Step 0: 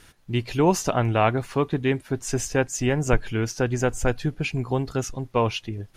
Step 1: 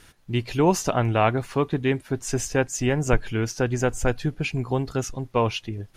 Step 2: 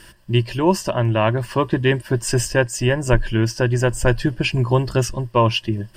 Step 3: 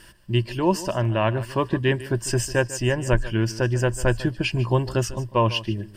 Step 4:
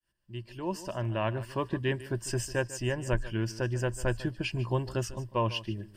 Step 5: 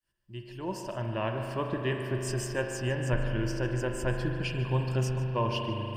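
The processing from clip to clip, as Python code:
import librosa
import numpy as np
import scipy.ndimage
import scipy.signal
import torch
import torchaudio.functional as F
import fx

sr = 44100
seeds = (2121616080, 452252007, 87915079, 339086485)

y1 = x
y2 = fx.ripple_eq(y1, sr, per_octave=1.3, db=11)
y2 = fx.rider(y2, sr, range_db=10, speed_s=0.5)
y2 = F.gain(torch.from_numpy(y2), 3.5).numpy()
y3 = y2 + 10.0 ** (-16.5 / 20.0) * np.pad(y2, (int(148 * sr / 1000.0), 0))[:len(y2)]
y3 = F.gain(torch.from_numpy(y3), -4.0).numpy()
y4 = fx.fade_in_head(y3, sr, length_s=1.16)
y4 = F.gain(torch.from_numpy(y4), -8.5).numpy()
y5 = fx.rev_spring(y4, sr, rt60_s=3.6, pass_ms=(39,), chirp_ms=30, drr_db=2.5)
y5 = F.gain(torch.from_numpy(y5), -1.5).numpy()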